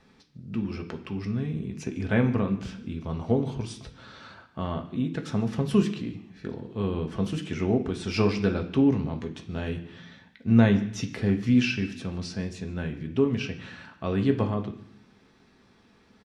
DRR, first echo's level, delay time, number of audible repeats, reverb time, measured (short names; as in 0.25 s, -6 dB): 4.0 dB, -22.0 dB, 0.148 s, 1, 0.65 s